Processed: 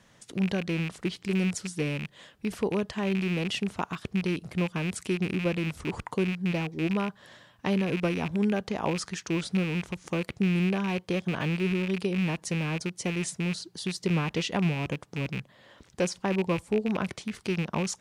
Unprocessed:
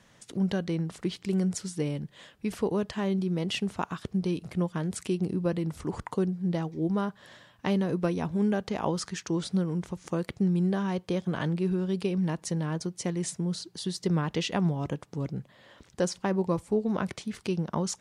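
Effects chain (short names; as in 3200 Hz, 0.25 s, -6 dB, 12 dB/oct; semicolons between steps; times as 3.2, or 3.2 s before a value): rattling part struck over -33 dBFS, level -25 dBFS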